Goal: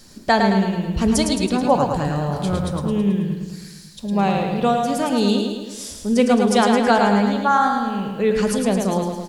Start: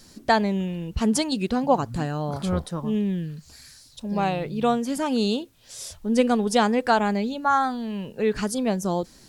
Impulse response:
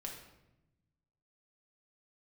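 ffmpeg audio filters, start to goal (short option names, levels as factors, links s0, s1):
-filter_complex "[0:a]aecho=1:1:108|216|324|432|540|648|756:0.562|0.315|0.176|0.0988|0.0553|0.031|0.0173,asplit=2[s0][s1];[1:a]atrim=start_sample=2205[s2];[s1][s2]afir=irnorm=-1:irlink=0,volume=0.708[s3];[s0][s3]amix=inputs=2:normalize=0"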